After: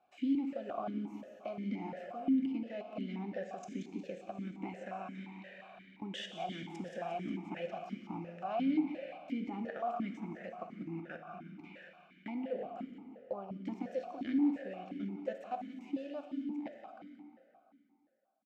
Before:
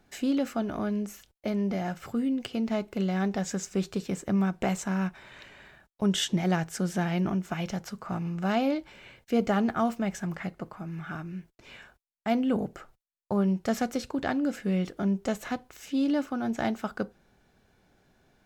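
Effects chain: fade out at the end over 5.79 s; band-stop 430 Hz, Q 12; in parallel at -2.5 dB: compression 10:1, threshold -41 dBFS, peak gain reduction 20.5 dB; on the sum: peak limiter -21.5 dBFS, peak gain reduction 9.5 dB; level held to a coarse grid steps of 17 dB; on a send: feedback delay 178 ms, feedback 52%, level -11 dB; on the sum: plate-style reverb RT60 2.7 s, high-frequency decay 0.8×, DRR 5 dB; stepped vowel filter 5.7 Hz; trim +7 dB

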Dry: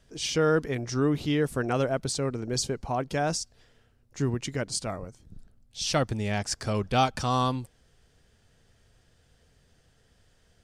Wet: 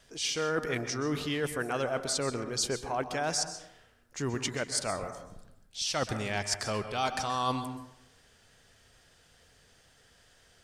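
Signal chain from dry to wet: bass shelf 410 Hz -11.5 dB; reverse; compression 5:1, threshold -35 dBFS, peak gain reduction 13 dB; reverse; wow and flutter 18 cents; plate-style reverb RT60 0.78 s, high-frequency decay 0.4×, pre-delay 115 ms, DRR 8.5 dB; trim +6.5 dB

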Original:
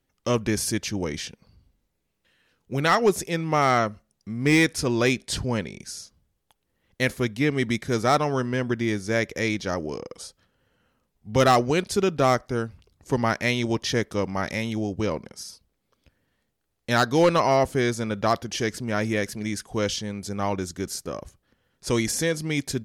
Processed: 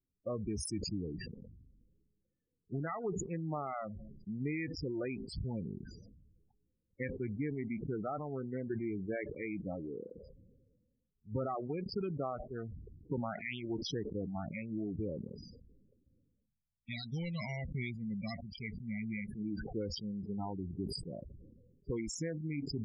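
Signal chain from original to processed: local Wiener filter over 41 samples; spectral noise reduction 10 dB; time-frequency box 16.46–19.31 s, 250–1900 Hz -18 dB; compression 8:1, threshold -32 dBFS, peak gain reduction 17 dB; loudest bins only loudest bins 16; decay stretcher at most 38 dB/s; trim -2.5 dB

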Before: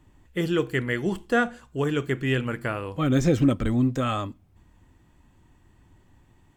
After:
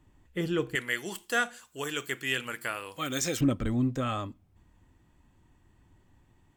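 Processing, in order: 0.75–3.41 s: tilt EQ +4.5 dB/octave; trim -5 dB

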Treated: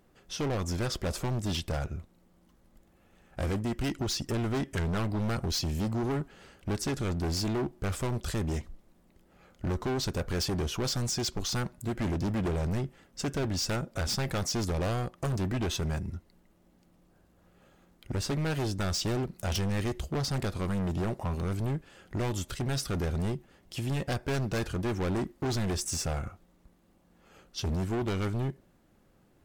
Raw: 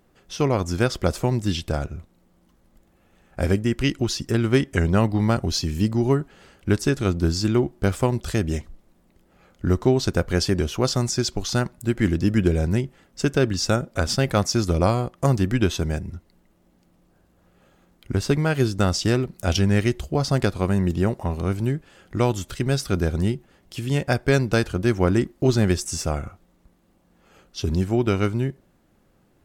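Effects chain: overload inside the chain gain 24.5 dB; trim -3 dB

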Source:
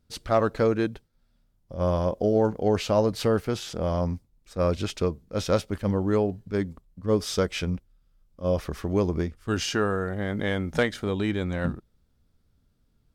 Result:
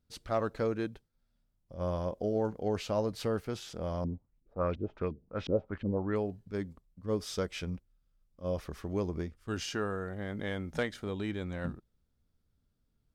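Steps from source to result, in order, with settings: 4.04–6.16 s: LFO low-pass saw up 2.8 Hz 250–3300 Hz; trim -9 dB

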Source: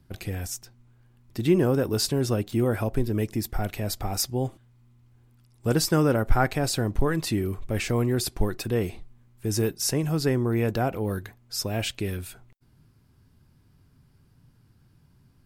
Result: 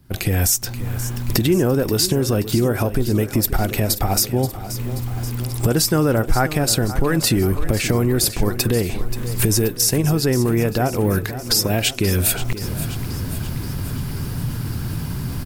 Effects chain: recorder AGC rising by 75 dB/s; treble shelf 11 kHz +9.5 dB; in parallel at 0 dB: level held to a coarse grid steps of 12 dB; on the sum: saturation -2.5 dBFS, distortion -25 dB; feedback delay 530 ms, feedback 59%, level -13 dB

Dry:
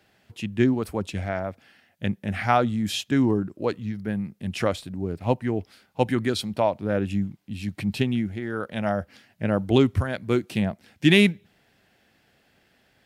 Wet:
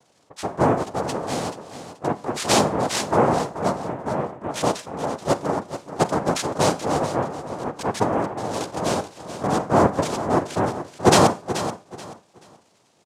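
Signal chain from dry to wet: resonances exaggerated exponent 2; noise-vocoded speech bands 2; on a send: feedback delay 431 ms, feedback 25%, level -11.5 dB; on the sum: Schroeder reverb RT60 0.38 s, combs from 31 ms, DRR 16 dB; trim +2 dB

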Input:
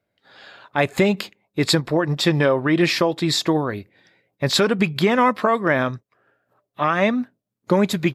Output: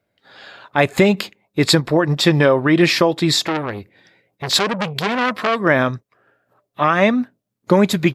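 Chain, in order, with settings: 3.36–5.60 s: transformer saturation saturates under 2.2 kHz; trim +4 dB

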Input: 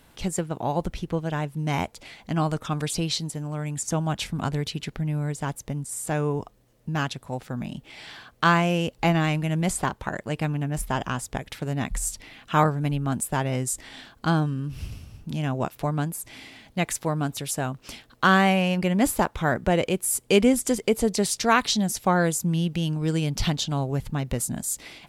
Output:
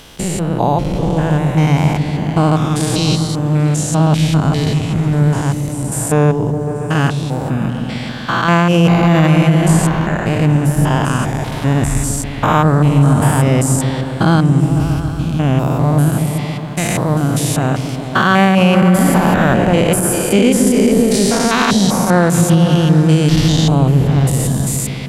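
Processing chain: spectrogram pixelated in time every 200 ms; delay with an opening low-pass 139 ms, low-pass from 200 Hz, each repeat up 1 oct, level -3 dB; loudness maximiser +15.5 dB; trim -1 dB

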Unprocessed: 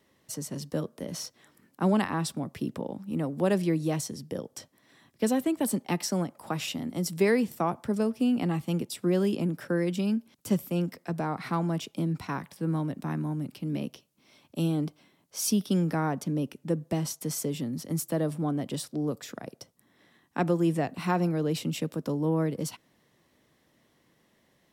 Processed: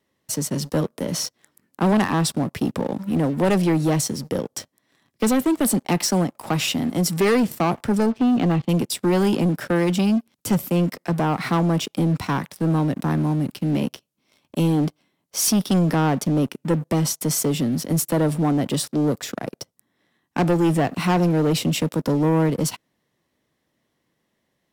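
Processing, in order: 8.06–8.69 s: Chebyshev low-pass 4 kHz, order 3; waveshaping leveller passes 3

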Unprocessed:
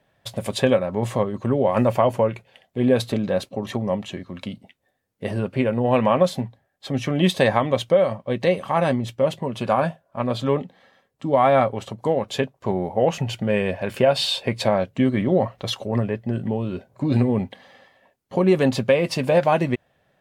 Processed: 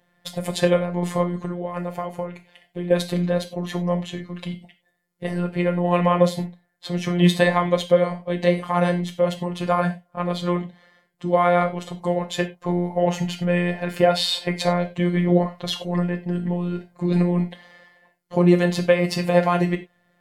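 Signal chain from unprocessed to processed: 1.35–2.91 s: compression 6:1, threshold -25 dBFS, peak gain reduction 11.5 dB; robot voice 176 Hz; gated-style reverb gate 120 ms falling, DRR 5.5 dB; trim +2 dB

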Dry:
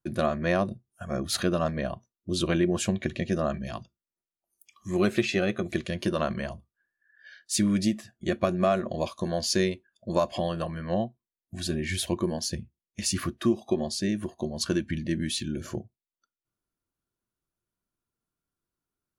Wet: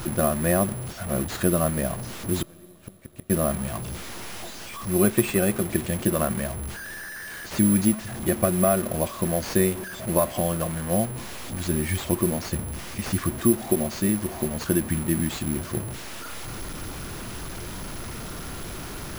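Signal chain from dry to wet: one-bit delta coder 32 kbps, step -32 dBFS; bass shelf 160 Hz +5 dB; 2.42–3.30 s: inverted gate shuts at -19 dBFS, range -31 dB; on a send at -23 dB: reverberation RT60 4.9 s, pre-delay 4 ms; on the sum: careless resampling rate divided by 4×, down none, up zero stuff; low-pass 2.2 kHz 6 dB/octave; trim +2.5 dB

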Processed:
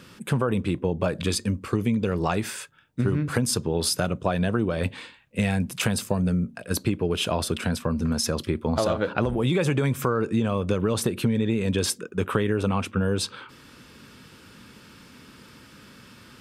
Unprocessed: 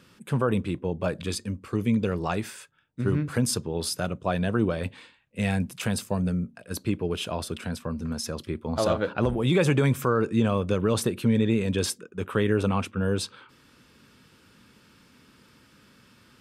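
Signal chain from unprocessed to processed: compression, threshold -28 dBFS, peak gain reduction 10.5 dB; trim +8 dB

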